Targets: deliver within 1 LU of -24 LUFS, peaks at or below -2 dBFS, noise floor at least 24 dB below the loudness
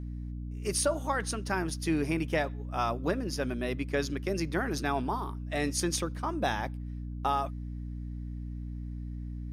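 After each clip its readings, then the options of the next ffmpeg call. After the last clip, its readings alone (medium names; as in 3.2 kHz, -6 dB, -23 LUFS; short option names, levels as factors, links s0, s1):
hum 60 Hz; highest harmonic 300 Hz; hum level -35 dBFS; loudness -32.5 LUFS; peak level -15.0 dBFS; loudness target -24.0 LUFS
-> -af "bandreject=f=60:t=h:w=4,bandreject=f=120:t=h:w=4,bandreject=f=180:t=h:w=4,bandreject=f=240:t=h:w=4,bandreject=f=300:t=h:w=4"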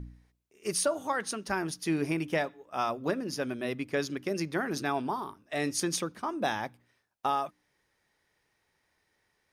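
hum not found; loudness -32.5 LUFS; peak level -15.0 dBFS; loudness target -24.0 LUFS
-> -af "volume=2.66"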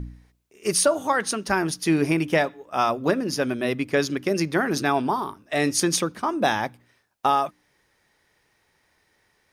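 loudness -24.0 LUFS; peak level -6.5 dBFS; noise floor -68 dBFS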